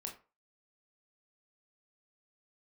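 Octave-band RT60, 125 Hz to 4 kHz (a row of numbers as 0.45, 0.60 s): 0.30, 0.30, 0.35, 0.35, 0.30, 0.20 s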